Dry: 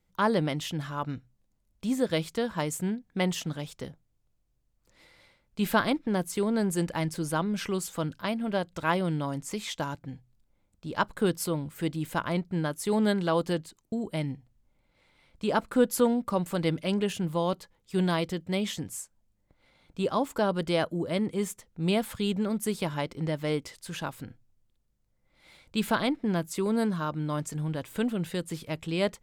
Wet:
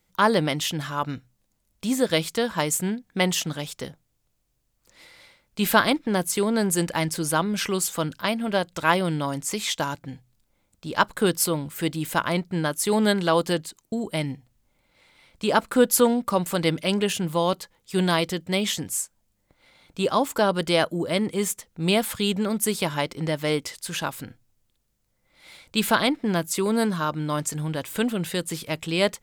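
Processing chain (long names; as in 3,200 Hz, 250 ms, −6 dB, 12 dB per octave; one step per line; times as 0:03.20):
spectral tilt +1.5 dB per octave
level +6.5 dB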